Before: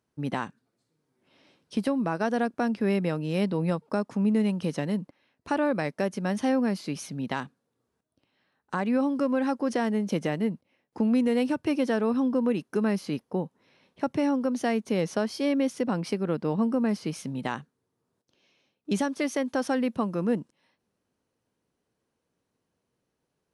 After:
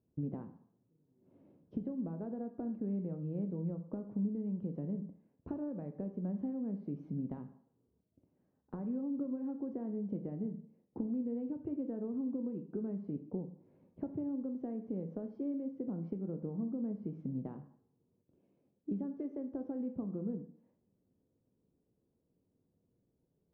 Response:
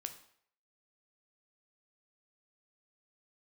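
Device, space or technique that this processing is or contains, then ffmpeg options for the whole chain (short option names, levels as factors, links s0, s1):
television next door: -filter_complex "[0:a]acompressor=threshold=0.0112:ratio=5,lowpass=370[s0];[1:a]atrim=start_sample=2205[s1];[s0][s1]afir=irnorm=-1:irlink=0,volume=2.24"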